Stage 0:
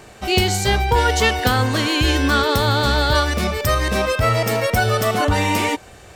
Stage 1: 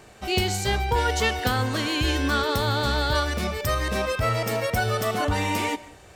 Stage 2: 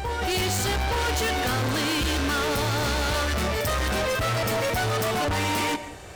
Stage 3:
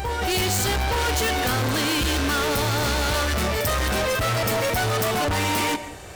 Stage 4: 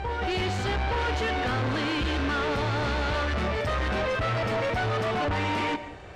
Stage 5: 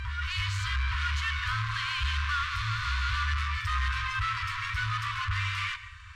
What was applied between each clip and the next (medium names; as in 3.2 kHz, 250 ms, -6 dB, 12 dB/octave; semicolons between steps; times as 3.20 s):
reverberation RT60 0.55 s, pre-delay 95 ms, DRR 19.5 dB; trim -6.5 dB
reverse echo 869 ms -12.5 dB; overload inside the chain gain 30.5 dB; trim +7 dB
treble shelf 10 kHz +5.5 dB; trim +2 dB
low-pass 3 kHz 12 dB/octave; trim -3.5 dB
FFT band-reject 110–960 Hz